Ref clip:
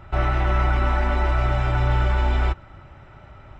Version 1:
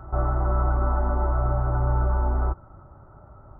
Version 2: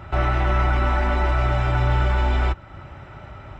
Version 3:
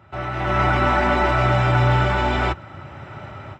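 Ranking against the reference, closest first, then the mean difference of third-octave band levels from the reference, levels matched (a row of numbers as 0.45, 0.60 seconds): 2, 3, 1; 1.0, 2.0, 7.0 decibels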